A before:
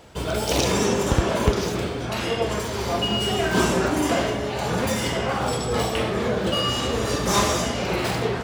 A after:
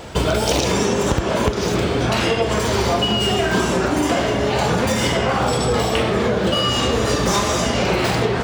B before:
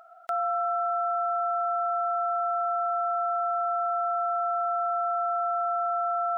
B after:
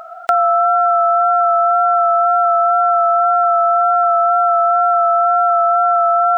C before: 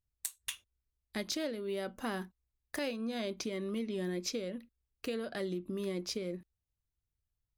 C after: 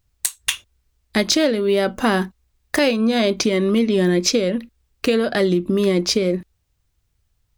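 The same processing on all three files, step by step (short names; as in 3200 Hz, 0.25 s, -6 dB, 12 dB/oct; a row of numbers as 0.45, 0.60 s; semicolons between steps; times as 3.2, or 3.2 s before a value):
bell 12000 Hz -6.5 dB 0.56 oct; compressor 12:1, threshold -28 dBFS; wow and flutter 23 cents; normalise peaks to -3 dBFS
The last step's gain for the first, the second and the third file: +13.5, +18.0, +19.0 dB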